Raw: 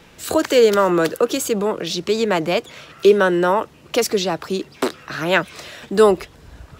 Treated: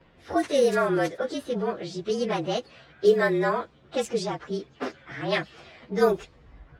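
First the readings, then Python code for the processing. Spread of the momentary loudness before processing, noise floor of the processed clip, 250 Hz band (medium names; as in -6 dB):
11 LU, -57 dBFS, -8.0 dB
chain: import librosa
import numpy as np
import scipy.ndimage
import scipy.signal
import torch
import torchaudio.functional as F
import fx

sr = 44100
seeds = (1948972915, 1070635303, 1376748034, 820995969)

y = fx.partial_stretch(x, sr, pct=110)
y = fx.env_lowpass(y, sr, base_hz=2200.0, full_db=-12.0)
y = y * librosa.db_to_amplitude(-5.5)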